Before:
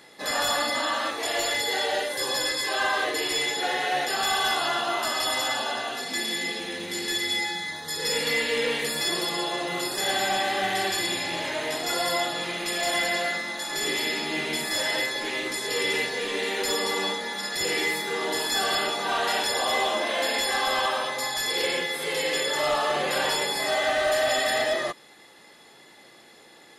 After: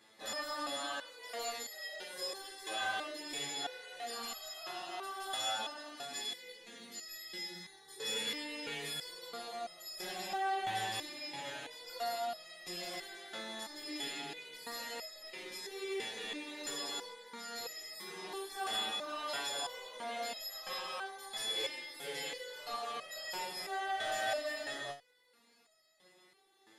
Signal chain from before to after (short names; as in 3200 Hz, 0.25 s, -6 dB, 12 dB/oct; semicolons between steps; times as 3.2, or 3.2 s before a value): stepped resonator 3 Hz 110–640 Hz; gain -1.5 dB